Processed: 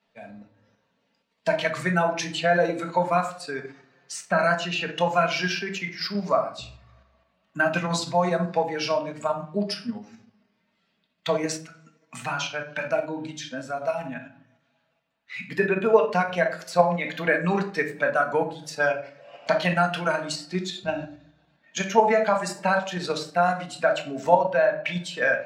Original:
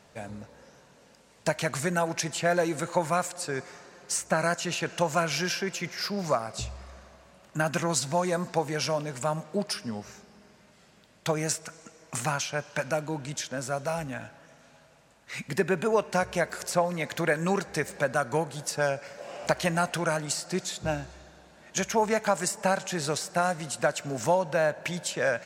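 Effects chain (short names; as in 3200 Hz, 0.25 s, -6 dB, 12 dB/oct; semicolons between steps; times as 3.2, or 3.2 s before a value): per-bin expansion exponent 1.5; three-band isolator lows -13 dB, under 150 Hz, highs -21 dB, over 4300 Hz; shoebox room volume 500 m³, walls furnished, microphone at 1.6 m; in parallel at +2.5 dB: level quantiser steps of 10 dB; on the sum: tilt +1.5 dB/oct; gain +1 dB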